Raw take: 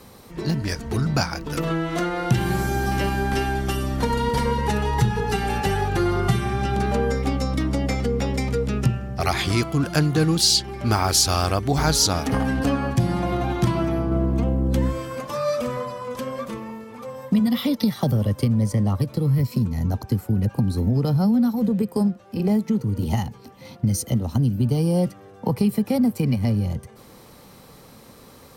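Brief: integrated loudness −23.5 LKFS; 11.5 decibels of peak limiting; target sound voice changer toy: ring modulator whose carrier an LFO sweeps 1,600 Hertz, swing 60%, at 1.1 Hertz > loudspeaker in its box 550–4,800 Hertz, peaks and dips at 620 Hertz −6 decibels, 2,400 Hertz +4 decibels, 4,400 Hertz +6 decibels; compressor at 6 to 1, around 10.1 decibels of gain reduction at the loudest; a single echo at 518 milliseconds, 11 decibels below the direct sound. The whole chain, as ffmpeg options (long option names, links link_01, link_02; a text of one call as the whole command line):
ffmpeg -i in.wav -af "acompressor=threshold=-26dB:ratio=6,alimiter=level_in=0.5dB:limit=-24dB:level=0:latency=1,volume=-0.5dB,aecho=1:1:518:0.282,aeval=exprs='val(0)*sin(2*PI*1600*n/s+1600*0.6/1.1*sin(2*PI*1.1*n/s))':channel_layout=same,highpass=550,equalizer=frequency=620:width_type=q:width=4:gain=-6,equalizer=frequency=2400:width_type=q:width=4:gain=4,equalizer=frequency=4400:width_type=q:width=4:gain=6,lowpass=frequency=4800:width=0.5412,lowpass=frequency=4800:width=1.3066,volume=8.5dB" out.wav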